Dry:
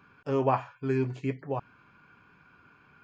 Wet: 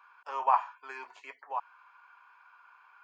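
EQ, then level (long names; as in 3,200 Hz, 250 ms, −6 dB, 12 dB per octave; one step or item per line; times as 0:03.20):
four-pole ladder high-pass 840 Hz, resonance 60%
+7.0 dB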